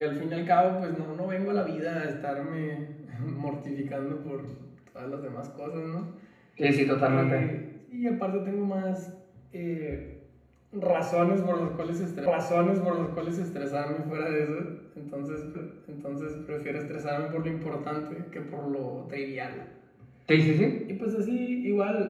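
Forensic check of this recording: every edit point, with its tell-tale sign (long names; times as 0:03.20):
0:12.26: the same again, the last 1.38 s
0:15.55: the same again, the last 0.92 s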